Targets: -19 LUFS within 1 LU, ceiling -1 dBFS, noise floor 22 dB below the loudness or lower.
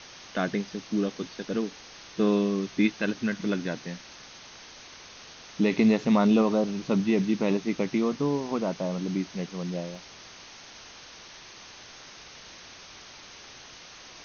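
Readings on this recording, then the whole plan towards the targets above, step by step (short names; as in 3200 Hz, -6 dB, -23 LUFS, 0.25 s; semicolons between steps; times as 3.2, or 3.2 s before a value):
dropouts 1; longest dropout 1.3 ms; noise floor -48 dBFS; noise floor target -49 dBFS; loudness -27.0 LUFS; peak -10.5 dBFS; loudness target -19.0 LUFS
-> interpolate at 9.95, 1.3 ms; denoiser 6 dB, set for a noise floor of -48 dBFS; gain +8 dB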